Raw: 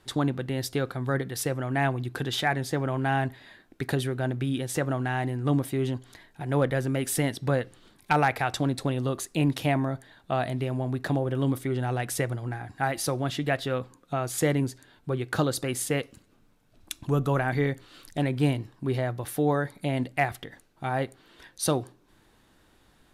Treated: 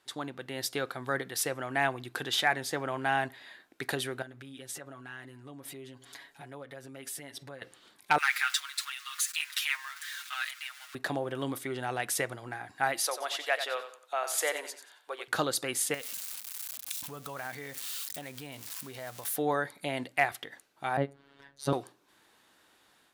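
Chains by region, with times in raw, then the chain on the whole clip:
4.22–7.62 s: compression 12:1, threshold -39 dBFS + comb 7.2 ms, depth 84%
8.18–10.95 s: jump at every zero crossing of -37.5 dBFS + steep high-pass 1.3 kHz + comb 6.4 ms, depth 81%
13.02–15.28 s: high-pass 500 Hz 24 dB/octave + feedback delay 91 ms, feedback 31%, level -10 dB
15.94–19.36 s: zero-crossing glitches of -28.5 dBFS + compression, threshold -32 dBFS + peaking EQ 350 Hz -9.5 dB 0.26 oct
20.97–21.73 s: tilt EQ -4.5 dB/octave + robot voice 139 Hz
whole clip: high-pass 810 Hz 6 dB/octave; level rider gain up to 6.5 dB; trim -5 dB

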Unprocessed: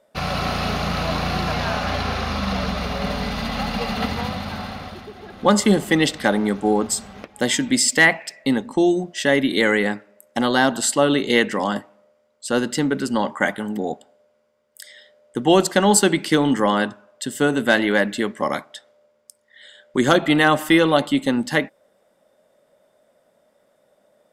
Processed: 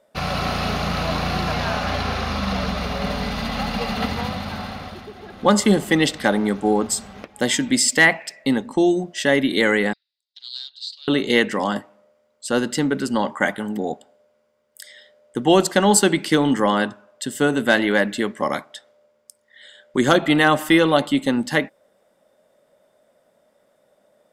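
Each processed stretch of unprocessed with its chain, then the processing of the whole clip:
9.93–11.08 s: Butterworth band-pass 4.1 kHz, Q 3.9 + loudspeaker Doppler distortion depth 0.12 ms
whole clip: none

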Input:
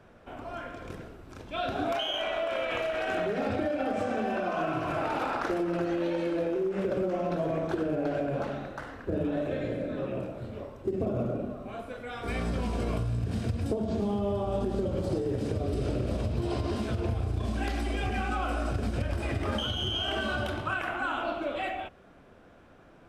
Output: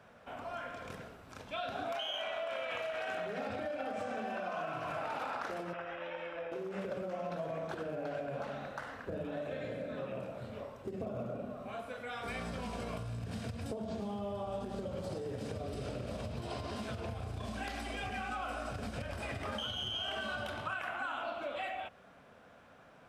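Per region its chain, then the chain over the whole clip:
5.73–6.52 s: Savitzky-Golay filter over 25 samples + peaking EQ 210 Hz -14.5 dB 2.3 oct
whole clip: high-pass 210 Hz 6 dB/octave; peaking EQ 340 Hz -11.5 dB 0.53 oct; compression 2.5:1, threshold -38 dBFS

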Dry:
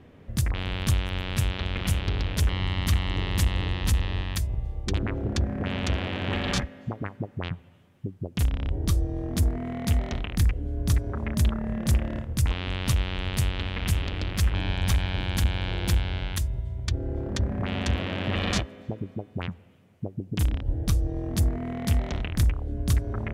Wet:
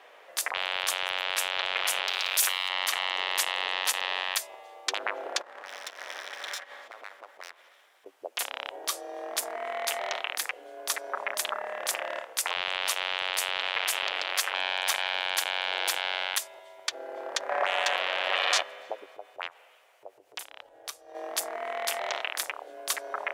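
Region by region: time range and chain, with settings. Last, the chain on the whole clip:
2.08–2.69 s: RIAA curve recording + waveshaping leveller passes 1 + flutter echo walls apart 9.4 m, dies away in 0.24 s
5.41–8.06 s: comb filter that takes the minimum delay 0.55 ms + compression 16:1, threshold -36 dBFS
17.49–17.96 s: treble shelf 5.5 kHz +5 dB + overdrive pedal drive 16 dB, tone 2 kHz, clips at -12.5 dBFS
19.05–21.15 s: resonant low shelf 170 Hz +7 dB, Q 3 + compression 3:1, threshold -29 dBFS
whole clip: inverse Chebyshev high-pass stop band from 180 Hz, stop band 60 dB; peak limiter -21.5 dBFS; trim +8.5 dB

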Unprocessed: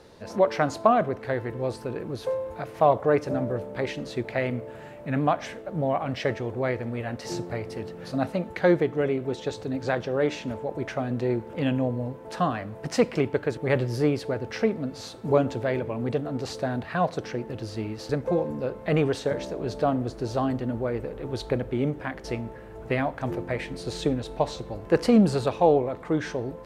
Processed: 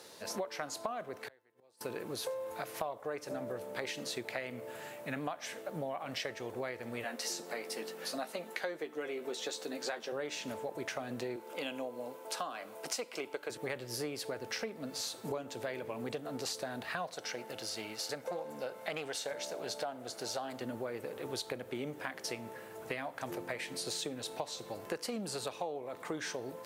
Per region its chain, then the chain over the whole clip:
1.17–1.81 s: bass shelf 170 Hz -9 dB + inverted gate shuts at -28 dBFS, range -33 dB
7.04–10.12 s: high-pass 210 Hz 24 dB/octave + doubling 13 ms -7 dB
11.36–13.50 s: high-pass 320 Hz + band-stop 1.8 kHz, Q 7
17.14–20.61 s: high-pass 310 Hz 6 dB/octave + comb 1.4 ms, depth 34% + loudspeaker Doppler distortion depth 0.2 ms
whole clip: high-pass 83 Hz 24 dB/octave; RIAA curve recording; compression 10:1, threshold -33 dBFS; trim -2 dB

